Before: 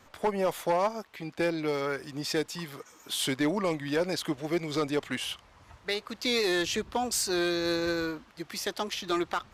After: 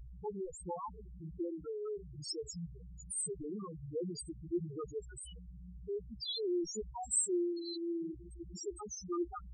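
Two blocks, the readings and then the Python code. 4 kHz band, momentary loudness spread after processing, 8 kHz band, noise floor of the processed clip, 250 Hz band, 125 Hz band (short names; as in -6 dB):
-13.5 dB, 14 LU, -2.5 dB, -51 dBFS, -8.5 dB, -7.5 dB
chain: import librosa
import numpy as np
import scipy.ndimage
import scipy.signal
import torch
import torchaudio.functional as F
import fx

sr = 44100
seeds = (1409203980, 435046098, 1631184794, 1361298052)

y = fx.graphic_eq(x, sr, hz=(125, 250, 500, 1000, 4000, 8000), db=(-11, -6, -11, -11, -6, 10))
y = fx.harmonic_tremolo(y, sr, hz=1.5, depth_pct=50, crossover_hz=900.0)
y = fx.echo_diffused(y, sr, ms=665, feedback_pct=61, wet_db=-15.5)
y = fx.dmg_buzz(y, sr, base_hz=60.0, harmonics=12, level_db=-49.0, tilt_db=-7, odd_only=False)
y = fx.fixed_phaser(y, sr, hz=410.0, stages=8)
y = fx.spec_topn(y, sr, count=2)
y = y * librosa.db_to_amplitude(10.0)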